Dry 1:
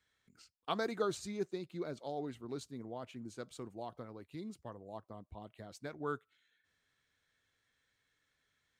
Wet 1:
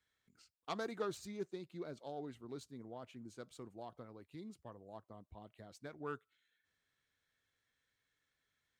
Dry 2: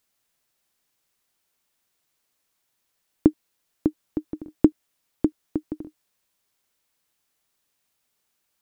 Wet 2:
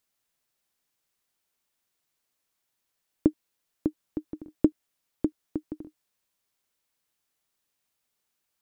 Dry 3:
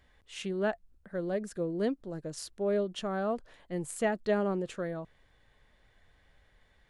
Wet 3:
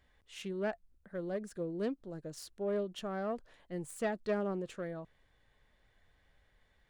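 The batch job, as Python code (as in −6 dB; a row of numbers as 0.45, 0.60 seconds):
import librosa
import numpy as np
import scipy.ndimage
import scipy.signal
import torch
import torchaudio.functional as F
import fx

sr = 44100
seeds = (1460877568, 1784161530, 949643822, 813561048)

y = fx.self_delay(x, sr, depth_ms=0.09)
y = y * 10.0 ** (-5.0 / 20.0)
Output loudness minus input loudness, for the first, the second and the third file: −5.0, −5.0, −5.0 LU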